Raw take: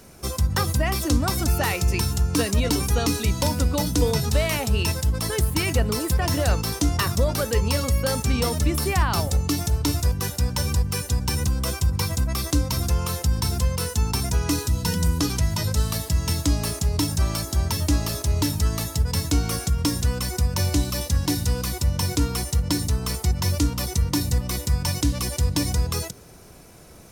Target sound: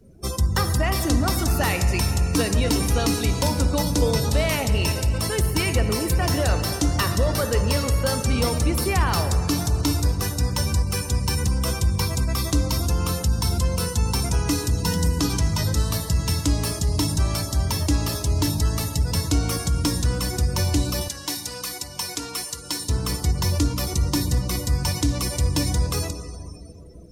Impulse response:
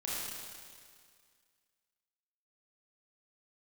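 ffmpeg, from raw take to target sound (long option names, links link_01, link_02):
-filter_complex "[0:a]asplit=2[link_01][link_02];[1:a]atrim=start_sample=2205,asetrate=25137,aresample=44100[link_03];[link_02][link_03]afir=irnorm=-1:irlink=0,volume=-14dB[link_04];[link_01][link_04]amix=inputs=2:normalize=0,asoftclip=type=tanh:threshold=-9.5dB,asettb=1/sr,asplit=3[link_05][link_06][link_07];[link_05]atrim=end=21.084[link_08];[link_06]atrim=start=21.08:end=22.89,asetpts=PTS-STARTPTS,afade=type=in:duration=0.004:curve=qsin,afade=type=out:start_time=1.806:duration=0.004:curve=qsin,highpass=frequency=960:poles=1[link_09];[link_07]atrim=start=22.886[link_10];[link_08][link_09]acrossfade=duration=0.004:curve1=hsin:curve2=qsin[link_11];[link_11][link_10]acrossfade=duration=0.004:curve1=qsin:curve2=hsin,afftdn=noise_reduction=23:noise_floor=-41"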